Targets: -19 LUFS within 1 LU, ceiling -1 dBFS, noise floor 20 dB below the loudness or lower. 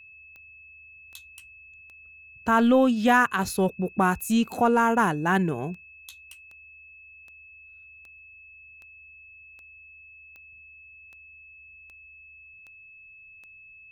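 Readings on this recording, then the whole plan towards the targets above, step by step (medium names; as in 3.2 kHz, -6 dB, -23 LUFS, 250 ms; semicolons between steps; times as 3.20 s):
clicks found 18; steady tone 2.6 kHz; tone level -47 dBFS; loudness -23.0 LUFS; peak level -9.0 dBFS; loudness target -19.0 LUFS
-> de-click; band-stop 2.6 kHz, Q 30; trim +4 dB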